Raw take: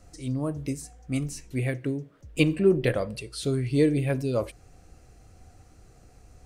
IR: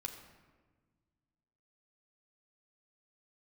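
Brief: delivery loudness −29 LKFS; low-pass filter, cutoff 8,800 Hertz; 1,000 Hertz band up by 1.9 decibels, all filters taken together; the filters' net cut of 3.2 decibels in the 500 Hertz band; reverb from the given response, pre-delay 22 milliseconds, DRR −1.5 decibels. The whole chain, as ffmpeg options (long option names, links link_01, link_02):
-filter_complex "[0:a]lowpass=8800,equalizer=frequency=500:width_type=o:gain=-5,equalizer=frequency=1000:width_type=o:gain=4.5,asplit=2[link_01][link_02];[1:a]atrim=start_sample=2205,adelay=22[link_03];[link_02][link_03]afir=irnorm=-1:irlink=0,volume=3dB[link_04];[link_01][link_04]amix=inputs=2:normalize=0,volume=-5dB"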